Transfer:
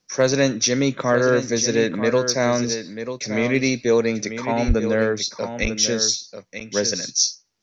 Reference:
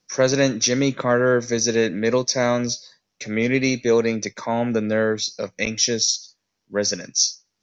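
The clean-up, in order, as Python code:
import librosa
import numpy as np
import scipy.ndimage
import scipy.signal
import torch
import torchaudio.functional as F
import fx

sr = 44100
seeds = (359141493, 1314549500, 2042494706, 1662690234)

y = fx.fix_declip(x, sr, threshold_db=-7.0)
y = fx.fix_deplosive(y, sr, at_s=(4.67,))
y = fx.fix_echo_inverse(y, sr, delay_ms=942, level_db=-9.5)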